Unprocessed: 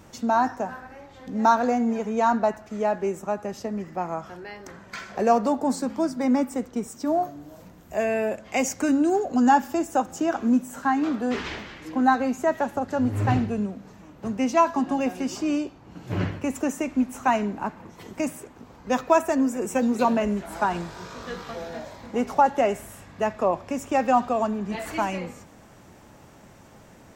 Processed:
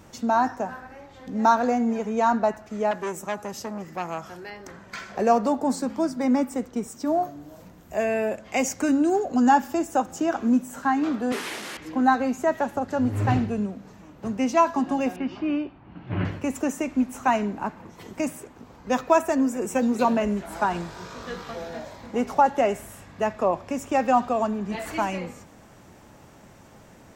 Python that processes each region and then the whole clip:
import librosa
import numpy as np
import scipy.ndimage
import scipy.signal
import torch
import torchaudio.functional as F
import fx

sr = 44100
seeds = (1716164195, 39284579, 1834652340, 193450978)

y = fx.chain(x, sr, fx.highpass(hz=55.0, slope=12),
    fx.high_shelf(hz=5000.0, db=10.5),
    fx.transformer_sat(knee_hz=1300.0), at=(2.91, 4.5))
y = fx.chain(y, sr, fx.delta_mod(bps=64000, step_db=-29.0),
    fx.highpass(hz=250.0, slope=12), at=(11.32, 11.77))
y = fx.chain(y, sr, fx.lowpass(hz=3100.0, slope=24),
    fx.peak_eq(hz=470.0, db=-6.5, octaves=0.47), at=(15.16, 16.25))